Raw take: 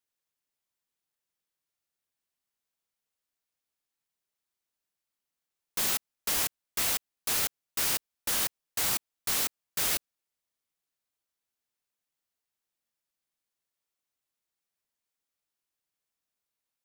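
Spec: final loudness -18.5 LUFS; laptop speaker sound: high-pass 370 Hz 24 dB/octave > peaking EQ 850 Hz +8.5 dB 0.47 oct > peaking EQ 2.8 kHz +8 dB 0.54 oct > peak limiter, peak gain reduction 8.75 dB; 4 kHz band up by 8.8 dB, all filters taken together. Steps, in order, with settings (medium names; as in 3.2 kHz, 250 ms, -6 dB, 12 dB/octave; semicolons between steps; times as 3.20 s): high-pass 370 Hz 24 dB/octave; peaking EQ 850 Hz +8.5 dB 0.47 oct; peaking EQ 2.8 kHz +8 dB 0.54 oct; peaking EQ 4 kHz +7 dB; trim +12.5 dB; peak limiter -8 dBFS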